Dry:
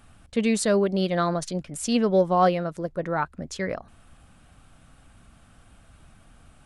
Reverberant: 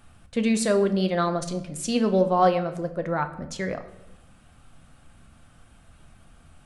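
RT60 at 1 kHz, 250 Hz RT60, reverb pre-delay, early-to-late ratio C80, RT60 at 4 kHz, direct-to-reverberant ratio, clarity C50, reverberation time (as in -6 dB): 0.80 s, 1.1 s, 6 ms, 15.5 dB, 0.70 s, 8.0 dB, 13.0 dB, 0.90 s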